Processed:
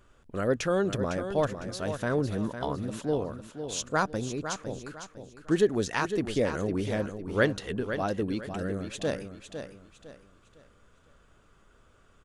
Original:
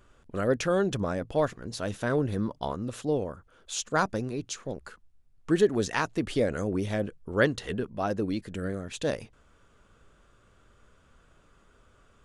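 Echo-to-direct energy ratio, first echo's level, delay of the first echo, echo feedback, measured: -8.5 dB, -9.0 dB, 0.505 s, 33%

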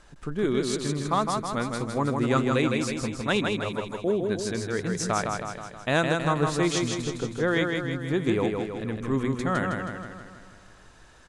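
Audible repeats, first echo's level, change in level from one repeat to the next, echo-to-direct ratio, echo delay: 7, -4.0 dB, -5.0 dB, -2.5 dB, 0.159 s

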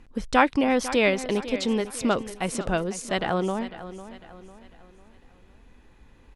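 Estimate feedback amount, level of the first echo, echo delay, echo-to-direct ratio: 41%, -14.0 dB, 0.5 s, -13.0 dB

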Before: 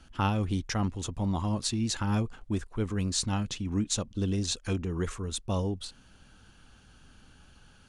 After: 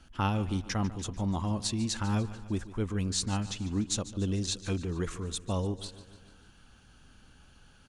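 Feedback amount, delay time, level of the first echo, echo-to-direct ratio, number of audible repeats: 57%, 0.147 s, -16.0 dB, -14.5 dB, 4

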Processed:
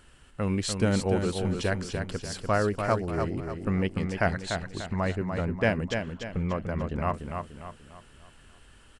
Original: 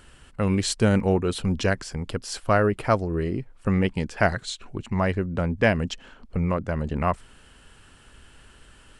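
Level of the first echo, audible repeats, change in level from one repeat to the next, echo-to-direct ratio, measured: -6.0 dB, 4, -7.5 dB, -5.0 dB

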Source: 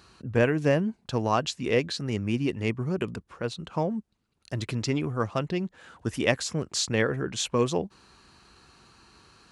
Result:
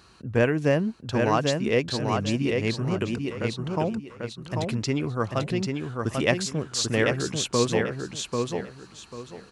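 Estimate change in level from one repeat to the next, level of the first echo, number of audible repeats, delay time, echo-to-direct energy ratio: -12.0 dB, -4.0 dB, 3, 0.792 s, -3.5 dB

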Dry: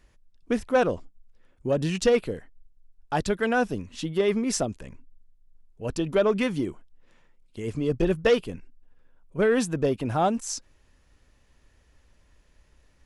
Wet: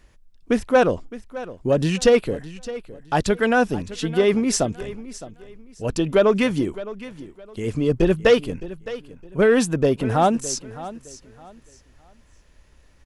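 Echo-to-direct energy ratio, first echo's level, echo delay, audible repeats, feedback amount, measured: -15.5 dB, -16.0 dB, 0.613 s, 2, 27%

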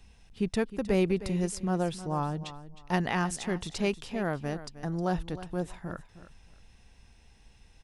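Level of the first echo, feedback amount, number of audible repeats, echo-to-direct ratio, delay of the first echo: -14.5 dB, 23%, 2, -14.5 dB, 0.312 s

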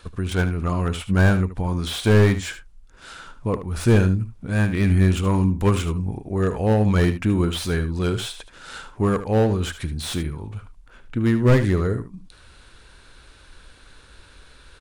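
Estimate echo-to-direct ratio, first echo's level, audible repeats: -12.0 dB, -12.0 dB, 1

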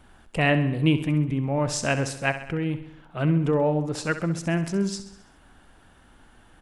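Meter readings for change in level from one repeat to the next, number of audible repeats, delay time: -5.0 dB, 5, 66 ms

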